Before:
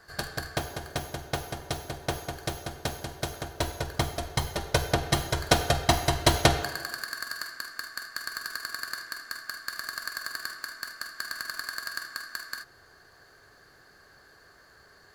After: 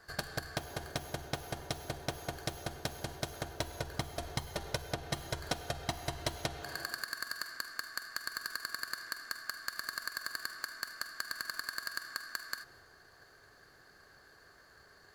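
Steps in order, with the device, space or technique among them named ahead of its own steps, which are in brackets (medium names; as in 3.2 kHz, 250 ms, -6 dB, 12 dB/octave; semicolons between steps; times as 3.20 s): drum-bus smash (transient shaper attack +7 dB, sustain +3 dB; compression 6:1, threshold -28 dBFS, peak gain reduction 19 dB; saturation -14 dBFS, distortion -21 dB); trim -4.5 dB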